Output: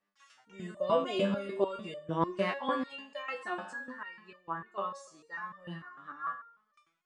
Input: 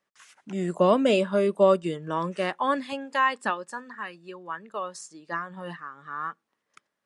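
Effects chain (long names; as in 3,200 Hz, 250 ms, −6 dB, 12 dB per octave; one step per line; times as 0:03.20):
high-frequency loss of the air 77 metres
four-comb reverb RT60 0.78 s, combs from 33 ms, DRR 11 dB
step-sequenced resonator 6.7 Hz 99–600 Hz
level +7 dB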